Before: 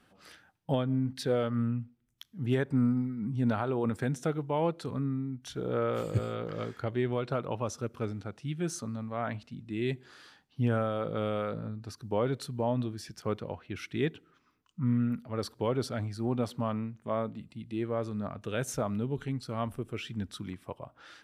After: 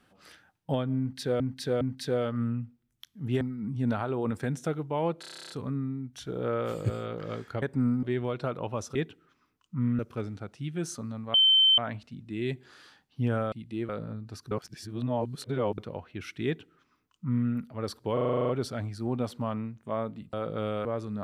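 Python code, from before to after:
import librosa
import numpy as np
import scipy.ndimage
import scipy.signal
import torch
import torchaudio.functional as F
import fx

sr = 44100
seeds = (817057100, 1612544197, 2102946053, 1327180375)

y = fx.edit(x, sr, fx.repeat(start_s=0.99, length_s=0.41, count=3),
    fx.move(start_s=2.59, length_s=0.41, to_s=6.91),
    fx.stutter(start_s=4.79, slice_s=0.03, count=11),
    fx.insert_tone(at_s=9.18, length_s=0.44, hz=3090.0, db=-17.0),
    fx.swap(start_s=10.92, length_s=0.52, other_s=17.52, other_length_s=0.37),
    fx.reverse_span(start_s=12.06, length_s=1.27),
    fx.duplicate(start_s=14.0, length_s=1.04, to_s=7.83),
    fx.stutter(start_s=15.68, slice_s=0.04, count=10), tone=tone)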